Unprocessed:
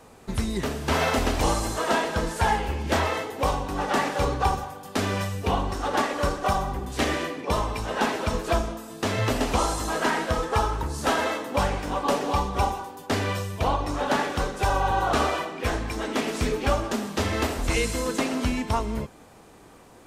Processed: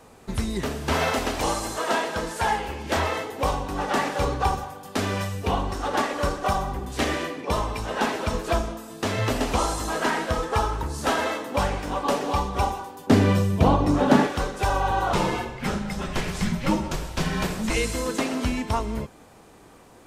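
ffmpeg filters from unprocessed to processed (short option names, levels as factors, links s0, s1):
-filter_complex "[0:a]asettb=1/sr,asplit=3[s0][s1][s2];[s0]atrim=end=1.124[s3];[s1]atrim=start=1.12:end=2.97,asetpts=PTS-STARTPTS,afade=t=in:d=0.004:c=qsin,afade=t=out:st=1.846:d=0.004:c=qsin,lowshelf=f=170:g=-9[s4];[s2]atrim=start=2.966[s5];[s3][s4]acrossfade=d=0.004:c1=hsin:c2=qsin[s6];[s6][s5]acrossfade=d=0.004:c1=qsin:c2=hsin,asettb=1/sr,asplit=3[s7][s8][s9];[s7]atrim=end=13.074[s10];[s8]atrim=start=13.07:end=14.27,asetpts=PTS-STARTPTS,afade=t=in:d=0.004:c=qsin,afade=t=out:st=1.196:d=0.004:c=qsin,equalizer=f=190:w=0.54:g=14[s11];[s9]atrim=start=14.266[s12];[s10][s11]acrossfade=d=0.004:c1=hsin:c2=qsin[s13];[s13][s12]acrossfade=d=0.004:c1=qsin:c2=hsin,asettb=1/sr,asplit=3[s14][s15][s16];[s14]atrim=end=15.134[s17];[s15]atrim=start=15.13:end=17.7,asetpts=PTS-STARTPTS,afade=t=in:d=0.004:c=qsin,afade=t=out:st=2.566:d=0.004:c=qsin,afreqshift=-260[s18];[s16]atrim=start=17.696[s19];[s17][s18]acrossfade=d=0.004:c1=hsin:c2=qsin[s20];[s20][s19]acrossfade=d=0.004:c1=qsin:c2=hsin"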